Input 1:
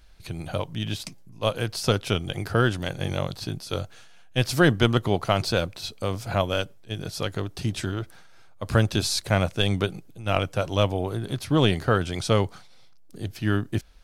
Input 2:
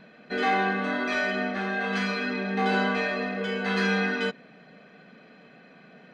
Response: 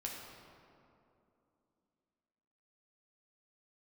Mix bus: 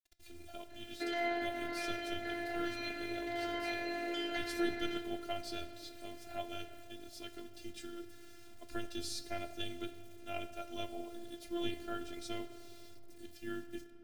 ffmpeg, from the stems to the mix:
-filter_complex "[0:a]flanger=delay=8:depth=4.3:regen=68:speed=1.7:shape=sinusoidal,acrusher=bits=7:mix=0:aa=0.000001,volume=-11.5dB,asplit=3[link_01][link_02][link_03];[link_02]volume=-4.5dB[link_04];[1:a]alimiter=limit=-23.5dB:level=0:latency=1,adelay=700,volume=0dB,asplit=2[link_05][link_06];[link_06]volume=-8.5dB[link_07];[link_03]apad=whole_len=301359[link_08];[link_05][link_08]sidechaincompress=threshold=-39dB:ratio=8:attack=10:release=1090[link_09];[2:a]atrim=start_sample=2205[link_10];[link_04][link_07]amix=inputs=2:normalize=0[link_11];[link_11][link_10]afir=irnorm=-1:irlink=0[link_12];[link_01][link_09][link_12]amix=inputs=3:normalize=0,afftfilt=real='hypot(re,im)*cos(PI*b)':imag='0':win_size=512:overlap=0.75,equalizer=frequency=1100:width=3.8:gain=-13.5"

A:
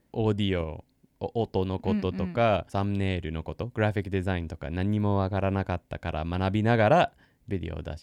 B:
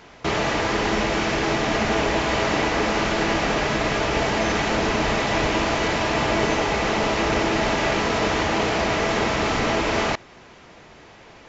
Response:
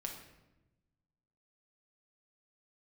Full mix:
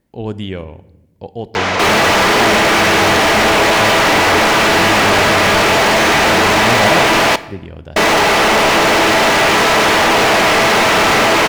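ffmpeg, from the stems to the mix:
-filter_complex "[0:a]volume=0.5dB,asplit=2[link_01][link_02];[link_02]volume=-9dB[link_03];[1:a]highpass=frequency=80:width=0.5412,highpass=frequency=80:width=1.3066,asplit=2[link_04][link_05];[link_05]highpass=frequency=720:poles=1,volume=39dB,asoftclip=type=tanh:threshold=-9dB[link_06];[link_04][link_06]amix=inputs=2:normalize=0,lowpass=frequency=3600:poles=1,volume=-6dB,adelay=1550,volume=2dB,asplit=3[link_07][link_08][link_09];[link_07]atrim=end=7.36,asetpts=PTS-STARTPTS,afade=type=out:start_time=7.356:duration=0.004:curve=hsin[link_10];[link_08]atrim=start=7.36:end=7.96,asetpts=PTS-STARTPTS,volume=0[link_11];[link_09]atrim=start=7.96,asetpts=PTS-STARTPTS,afade=type=in:duration=0.004:curve=hsin[link_12];[link_10][link_11][link_12]concat=n=3:v=0:a=1,asplit=2[link_13][link_14];[link_14]volume=-8.5dB[link_15];[2:a]atrim=start_sample=2205[link_16];[link_03][link_15]amix=inputs=2:normalize=0[link_17];[link_17][link_16]afir=irnorm=-1:irlink=0[link_18];[link_01][link_13][link_18]amix=inputs=3:normalize=0"

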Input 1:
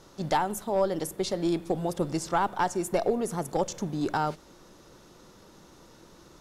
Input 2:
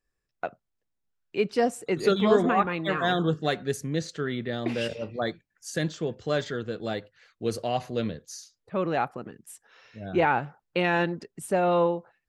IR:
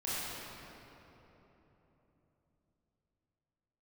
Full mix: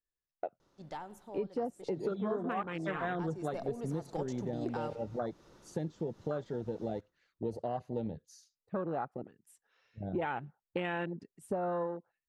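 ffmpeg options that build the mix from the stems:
-filter_complex "[0:a]highshelf=frequency=7200:gain=-10.5,adelay=600,volume=-6dB,afade=type=in:start_time=2.84:duration=0.76:silence=0.266073,asplit=2[link_01][link_02];[link_02]volume=-22dB[link_03];[1:a]afwtdn=0.0355,volume=0dB[link_04];[link_03]aecho=0:1:95|190|285|380|475|570|665|760:1|0.52|0.27|0.141|0.0731|0.038|0.0198|0.0103[link_05];[link_01][link_04][link_05]amix=inputs=3:normalize=0,acompressor=threshold=-33dB:ratio=5"

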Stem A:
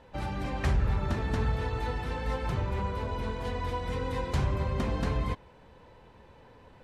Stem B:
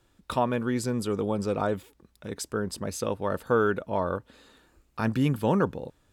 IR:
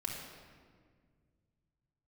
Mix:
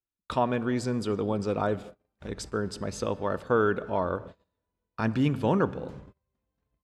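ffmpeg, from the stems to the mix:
-filter_complex "[0:a]adelay=1550,volume=-18.5dB[link_01];[1:a]lowpass=6500,volume=-1.5dB,asplit=3[link_02][link_03][link_04];[link_03]volume=-14dB[link_05];[link_04]apad=whole_len=369774[link_06];[link_01][link_06]sidechaincompress=threshold=-36dB:ratio=4:attack=21:release=358[link_07];[2:a]atrim=start_sample=2205[link_08];[link_05][link_08]afir=irnorm=-1:irlink=0[link_09];[link_07][link_02][link_09]amix=inputs=3:normalize=0,agate=range=-34dB:threshold=-41dB:ratio=16:detection=peak"

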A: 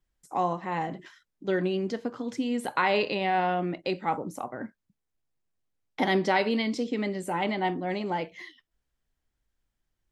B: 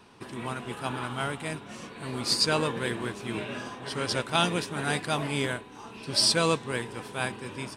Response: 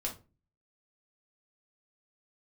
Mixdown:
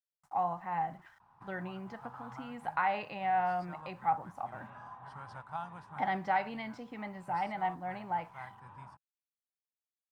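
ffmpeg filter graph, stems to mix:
-filter_complex "[0:a]equalizer=frequency=160:width_type=o:width=0.67:gain=-4,equalizer=frequency=1000:width_type=o:width=0.67:gain=-11,equalizer=frequency=2500:width_type=o:width=0.67:gain=7,acrusher=bits=8:mix=0:aa=0.000001,volume=-2.5dB,asplit=2[link_01][link_02];[1:a]acompressor=threshold=-32dB:ratio=2,adelay=1200,volume=-10.5dB[link_03];[link_02]apad=whole_len=395521[link_04];[link_03][link_04]sidechaincompress=threshold=-32dB:ratio=8:attack=8.2:release=937[link_05];[link_01][link_05]amix=inputs=2:normalize=0,firequalizer=gain_entry='entry(150,0);entry(240,-13);entry(420,-18);entry(820,9);entry(2400,-15);entry(3400,-18);entry(12000,-21)':delay=0.05:min_phase=1"

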